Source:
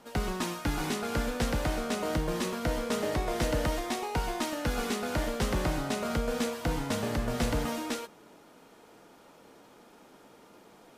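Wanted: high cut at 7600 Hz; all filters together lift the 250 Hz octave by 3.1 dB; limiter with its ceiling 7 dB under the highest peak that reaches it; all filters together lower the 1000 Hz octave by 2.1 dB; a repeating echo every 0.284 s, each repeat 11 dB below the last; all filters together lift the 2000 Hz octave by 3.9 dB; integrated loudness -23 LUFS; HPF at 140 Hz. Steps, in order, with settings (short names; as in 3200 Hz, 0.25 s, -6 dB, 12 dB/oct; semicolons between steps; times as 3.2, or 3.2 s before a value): HPF 140 Hz; LPF 7600 Hz; bell 250 Hz +4.5 dB; bell 1000 Hz -5 dB; bell 2000 Hz +6.5 dB; limiter -22 dBFS; feedback echo 0.284 s, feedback 28%, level -11 dB; gain +9 dB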